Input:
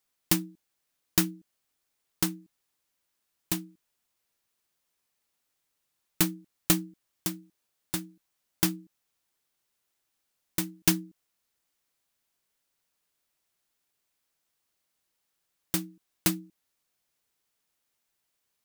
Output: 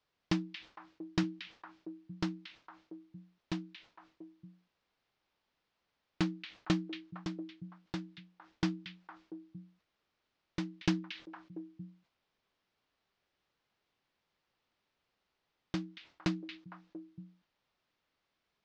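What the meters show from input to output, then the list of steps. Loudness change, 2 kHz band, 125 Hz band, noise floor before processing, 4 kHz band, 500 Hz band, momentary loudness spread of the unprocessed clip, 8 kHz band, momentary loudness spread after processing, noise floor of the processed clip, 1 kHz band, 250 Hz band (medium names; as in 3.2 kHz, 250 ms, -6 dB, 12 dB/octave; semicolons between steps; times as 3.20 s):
-10.0 dB, -5.5 dB, -3.0 dB, -80 dBFS, -8.5 dB, -3.0 dB, 14 LU, -23.5 dB, 20 LU, -84 dBFS, -4.0 dB, -3.0 dB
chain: word length cut 12-bit, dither triangular; inverse Chebyshev low-pass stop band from 11 kHz, stop band 50 dB; treble shelf 2.2 kHz -7.5 dB; on a send: repeats whose band climbs or falls 229 ms, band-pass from 2.8 kHz, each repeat -1.4 oct, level -4 dB; on the sum: decay stretcher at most 150 dB/s; trim -3.5 dB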